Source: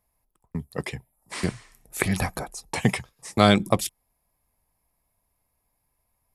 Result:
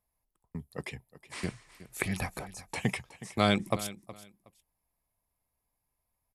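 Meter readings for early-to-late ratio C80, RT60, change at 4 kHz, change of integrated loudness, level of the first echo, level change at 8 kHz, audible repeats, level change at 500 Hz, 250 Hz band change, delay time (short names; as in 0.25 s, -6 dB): none, none, -7.0 dB, -8.0 dB, -16.5 dB, -8.5 dB, 2, -8.5 dB, -8.5 dB, 0.368 s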